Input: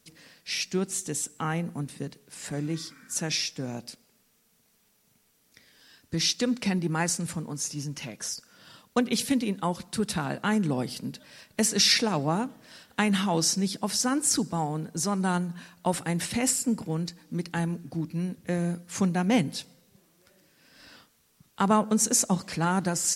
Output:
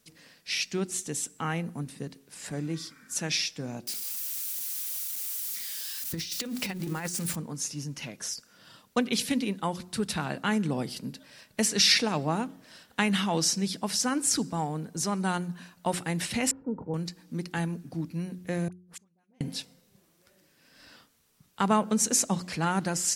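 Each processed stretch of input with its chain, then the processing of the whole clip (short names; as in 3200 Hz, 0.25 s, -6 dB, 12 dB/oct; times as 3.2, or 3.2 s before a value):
3.87–7.36 switching spikes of -29.5 dBFS + notches 50/100/150/200/250/300/350/400/450 Hz + negative-ratio compressor -29 dBFS, ratio -0.5
16.51–16.94 LPF 1100 Hz 24 dB/oct + comb 2.2 ms, depth 45%
18.68–19.41 flipped gate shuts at -30 dBFS, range -41 dB + dispersion highs, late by 44 ms, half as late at 980 Hz
whole clip: de-hum 90.19 Hz, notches 4; dynamic EQ 2800 Hz, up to +4 dB, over -41 dBFS, Q 0.94; gain -2 dB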